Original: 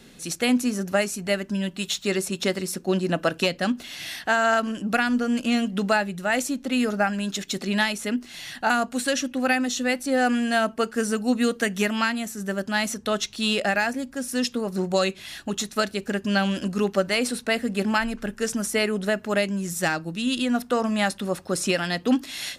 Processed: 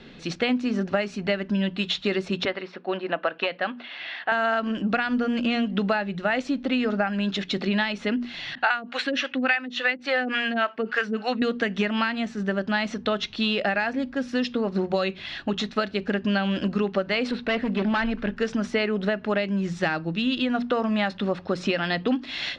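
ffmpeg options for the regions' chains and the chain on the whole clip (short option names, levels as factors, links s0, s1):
-filter_complex "[0:a]asettb=1/sr,asplit=3[s0][s1][s2];[s0]atrim=end=2.454[s3];[s1]atrim=start=2.45:end=4.32,asetpts=PTS-STARTPTS,afade=t=in:d=0.004:c=qsin,afade=t=out:st=1.866:d=0.004:c=qsin,highpass=680,lowpass=3600,aemphasis=mode=reproduction:type=bsi[s4];[s2]atrim=start=4.316[s5];[s3][s4]acrossfade=d=0.004:c1=hsin:c2=qsin[s6];[s6][s5]acrossfade=d=0.004:c1=qsin:c2=hsin,asettb=1/sr,asplit=3[s7][s8][s9];[s7]atrim=end=8.554[s10];[s8]atrim=start=8.55:end=11.42,asetpts=PTS-STARTPTS,afade=t=in:d=0.004:c=qsin,afade=t=out:st=2.866:d=0.004:c=qsin,acrossover=split=430[s11][s12];[s11]aeval=exprs='val(0)*(1-1/2+1/2*cos(2*PI*3.5*n/s))':c=same[s13];[s12]aeval=exprs='val(0)*(1-1/2-1/2*cos(2*PI*3.5*n/s))':c=same[s14];[s13][s14]amix=inputs=2:normalize=0,highpass=f=190:p=1,equalizer=f=2100:w=0.47:g=12[s15];[s9]atrim=start=11.416[s16];[s10][s15]acrossfade=d=0.004:c1=hsin:c2=qsin[s17];[s17][s16]acrossfade=d=0.004:c1=qsin:c2=hsin,asettb=1/sr,asplit=3[s18][s19][s20];[s18]atrim=end=17.314[s21];[s19]atrim=start=17.31:end=18.35,asetpts=PTS-STARTPTS,afade=t=in:d=0.004:c=qsin,afade=t=out:st=1.036:d=0.004:c=qsin,acrossover=split=4500[s22][s23];[s23]acompressor=threshold=0.00355:ratio=4:attack=1:release=60[s24];[s22][s24]amix=inputs=2:normalize=0,asoftclip=type=hard:threshold=0.0708[s25];[s20]atrim=start=18.346[s26];[s21][s25]acrossfade=d=0.004:c1=hsin:c2=qsin[s27];[s27][s26]acrossfade=d=0.004:c1=qsin:c2=hsin,lowpass=f=4000:w=0.5412,lowpass=f=4000:w=1.3066,bandreject=f=60:t=h:w=6,bandreject=f=120:t=h:w=6,bandreject=f=180:t=h:w=6,bandreject=f=240:t=h:w=6,acompressor=threshold=0.0562:ratio=6,volume=1.68"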